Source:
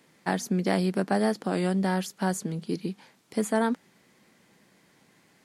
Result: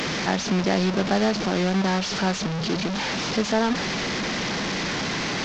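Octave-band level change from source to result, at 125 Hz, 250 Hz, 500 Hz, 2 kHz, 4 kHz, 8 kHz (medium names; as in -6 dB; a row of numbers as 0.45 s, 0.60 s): +4.5 dB, +4.0 dB, +4.0 dB, +10.0 dB, +15.5 dB, +7.0 dB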